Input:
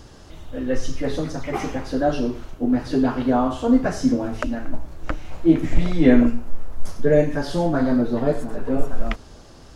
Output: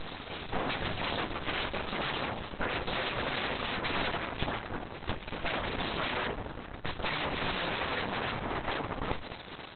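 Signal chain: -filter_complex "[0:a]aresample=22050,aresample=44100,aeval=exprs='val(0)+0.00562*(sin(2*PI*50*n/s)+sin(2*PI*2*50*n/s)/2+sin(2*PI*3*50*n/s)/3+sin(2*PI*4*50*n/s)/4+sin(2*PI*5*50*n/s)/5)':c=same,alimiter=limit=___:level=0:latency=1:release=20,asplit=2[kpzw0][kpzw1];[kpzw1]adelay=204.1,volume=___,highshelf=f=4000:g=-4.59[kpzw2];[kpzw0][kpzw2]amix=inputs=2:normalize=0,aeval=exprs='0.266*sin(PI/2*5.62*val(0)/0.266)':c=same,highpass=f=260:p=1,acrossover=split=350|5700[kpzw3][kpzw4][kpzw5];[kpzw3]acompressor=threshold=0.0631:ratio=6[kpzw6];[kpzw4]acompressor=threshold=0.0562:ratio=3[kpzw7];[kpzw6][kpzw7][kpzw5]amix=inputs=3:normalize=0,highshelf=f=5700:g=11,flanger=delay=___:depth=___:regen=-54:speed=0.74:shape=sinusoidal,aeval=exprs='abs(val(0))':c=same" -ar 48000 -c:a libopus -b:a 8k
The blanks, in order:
0.237, 0.112, 10, 1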